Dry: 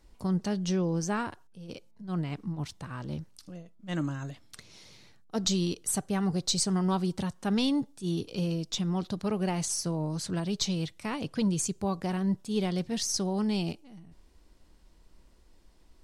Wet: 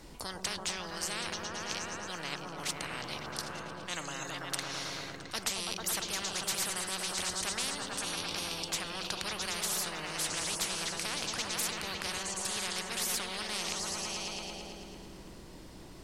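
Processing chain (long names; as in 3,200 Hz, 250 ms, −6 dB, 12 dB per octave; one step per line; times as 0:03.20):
echo whose low-pass opens from repeat to repeat 111 ms, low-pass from 200 Hz, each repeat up 1 octave, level 0 dB
every bin compressed towards the loudest bin 10 to 1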